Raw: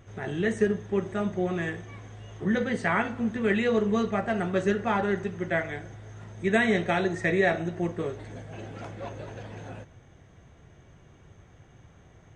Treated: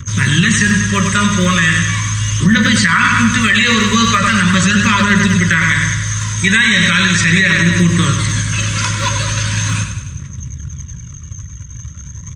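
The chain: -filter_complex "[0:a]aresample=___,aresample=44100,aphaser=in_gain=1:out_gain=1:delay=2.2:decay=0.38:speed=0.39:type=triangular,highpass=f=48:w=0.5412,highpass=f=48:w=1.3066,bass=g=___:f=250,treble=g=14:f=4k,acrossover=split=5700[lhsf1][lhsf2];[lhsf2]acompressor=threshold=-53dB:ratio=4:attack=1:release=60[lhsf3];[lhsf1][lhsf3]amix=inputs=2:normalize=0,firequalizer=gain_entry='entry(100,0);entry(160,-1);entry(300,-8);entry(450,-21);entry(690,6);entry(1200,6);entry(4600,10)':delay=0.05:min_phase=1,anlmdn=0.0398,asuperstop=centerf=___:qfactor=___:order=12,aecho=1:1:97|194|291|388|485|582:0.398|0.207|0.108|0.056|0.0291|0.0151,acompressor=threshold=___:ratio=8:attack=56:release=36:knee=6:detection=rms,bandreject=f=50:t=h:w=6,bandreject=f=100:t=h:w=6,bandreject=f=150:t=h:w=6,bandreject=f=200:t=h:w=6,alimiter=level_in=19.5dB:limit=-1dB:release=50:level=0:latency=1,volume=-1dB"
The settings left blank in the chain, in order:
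22050, 7, 750, 2, -28dB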